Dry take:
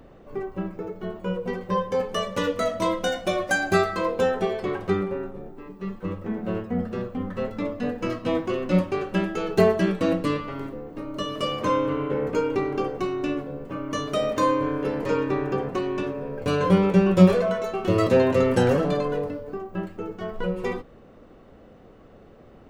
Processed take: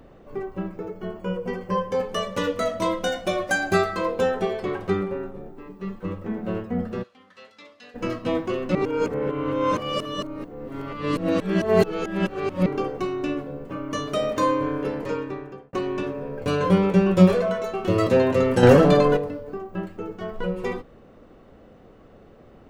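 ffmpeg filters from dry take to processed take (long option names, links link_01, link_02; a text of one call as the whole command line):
ffmpeg -i in.wav -filter_complex "[0:a]asettb=1/sr,asplit=3[link_01][link_02][link_03];[link_01]atrim=end=0.914[link_04];[link_02]atrim=start=0.91:end=1.91,asetpts=PTS-STARTPTS,afade=type=in:duration=0.004:curve=qsin,afade=type=out:start_time=0.996:duration=0.004:curve=qsin,asuperstop=centerf=3800:order=8:qfactor=6.4[link_05];[link_03]atrim=start=1.906[link_06];[link_04][link_05]acrossfade=duration=0.004:curve1=hsin:curve2=qsin[link_07];[link_07][link_06]acrossfade=duration=0.004:curve1=qsin:curve2=hsin,asplit=3[link_08][link_09][link_10];[link_08]afade=type=out:start_time=7.02:duration=0.02[link_11];[link_09]bandpass=frequency=4600:width_type=q:width=1.2,afade=type=in:start_time=7.02:duration=0.02,afade=type=out:start_time=7.94:duration=0.02[link_12];[link_10]afade=type=in:start_time=7.94:duration=0.02[link_13];[link_11][link_12][link_13]amix=inputs=3:normalize=0,asplit=6[link_14][link_15][link_16][link_17][link_18][link_19];[link_14]atrim=end=8.752[link_20];[link_15]atrim=start=8.748:end=12.662,asetpts=PTS-STARTPTS,areverse[link_21];[link_16]atrim=start=12.658:end=15.73,asetpts=PTS-STARTPTS,afade=type=out:start_time=2.142:duration=0.93[link_22];[link_17]atrim=start=15.73:end=18.632,asetpts=PTS-STARTPTS,afade=type=in:duration=0.004:curve=hsin[link_23];[link_18]atrim=start=18.628:end=19.172,asetpts=PTS-STARTPTS,volume=8dB[link_24];[link_19]atrim=start=19.168[link_25];[link_20][link_21]acrossfade=duration=0.004:curve1=hsin:curve2=hsin[link_26];[link_22][link_23]concat=n=2:v=0:a=1[link_27];[link_26][link_27]acrossfade=duration=0.004:curve1=hsin:curve2=hsin[link_28];[link_28][link_24]acrossfade=duration=0.004:curve1=hsin:curve2=hsin[link_29];[link_29][link_25]acrossfade=duration=0.004:curve1=hsin:curve2=hsin" out.wav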